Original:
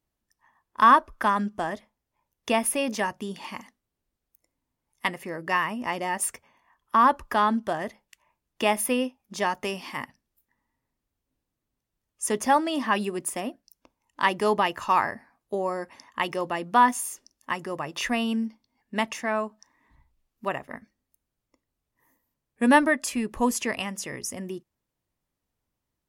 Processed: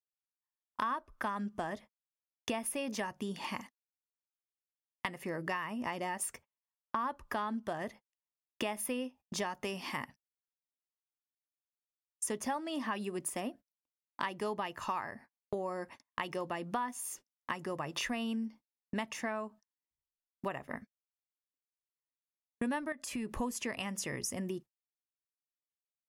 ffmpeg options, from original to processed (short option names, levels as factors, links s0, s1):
-filter_complex "[0:a]asettb=1/sr,asplit=3[s0][s1][s2];[s0]atrim=end=22.924[s3];[s1]atrim=start=22.92:end=23.35,asetpts=PTS-STARTPTS,afade=t=in:d=0.004:c=qsin,afade=t=out:st=0.426:d=0.004:c=qsin,acompressor=threshold=0.0316:ratio=5:attack=3.2:release=140:knee=1:detection=peak[s4];[s2]atrim=start=23.346[s5];[s3][s4]acrossfade=d=0.004:c1=hsin:c2=qsin[s6];[s6][s5]acrossfade=d=0.004:c1=qsin:c2=hsin,agate=range=0.00794:threshold=0.00631:ratio=16:detection=peak,equalizer=f=130:t=o:w=1.2:g=3,acompressor=threshold=0.02:ratio=6"